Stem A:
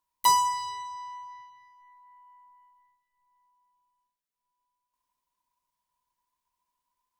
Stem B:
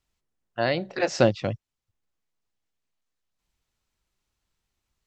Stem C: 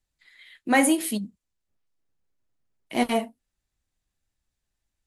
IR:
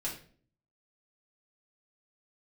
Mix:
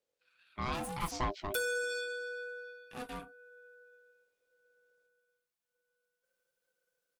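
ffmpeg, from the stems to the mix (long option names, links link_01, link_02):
-filter_complex "[0:a]aecho=1:1:5.8:0.81,acompressor=threshold=-26dB:ratio=10,adelay=1300,volume=0.5dB[link_01];[1:a]volume=-7dB[link_02];[2:a]aeval=exprs='(tanh(22.4*val(0)+0.75)-tanh(0.75))/22.4':channel_layout=same,volume=-9.5dB[link_03];[link_01][link_02][link_03]amix=inputs=3:normalize=0,aeval=exprs='val(0)*sin(2*PI*500*n/s)':channel_layout=same,asoftclip=type=tanh:threshold=-26dB"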